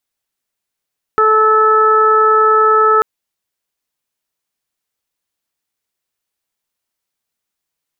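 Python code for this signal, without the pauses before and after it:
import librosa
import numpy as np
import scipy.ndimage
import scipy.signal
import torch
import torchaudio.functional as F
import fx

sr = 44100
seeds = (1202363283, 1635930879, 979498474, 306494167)

y = fx.additive_steady(sr, length_s=1.84, hz=435.0, level_db=-13.0, upper_db=(-8, 4, -11.5))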